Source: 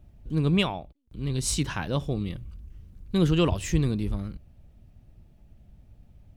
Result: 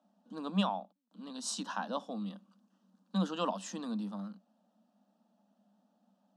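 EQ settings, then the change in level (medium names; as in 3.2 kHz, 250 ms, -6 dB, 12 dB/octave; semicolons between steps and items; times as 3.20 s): Chebyshev high-pass 190 Hz, order 8; distance through air 85 m; static phaser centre 910 Hz, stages 4; 0.0 dB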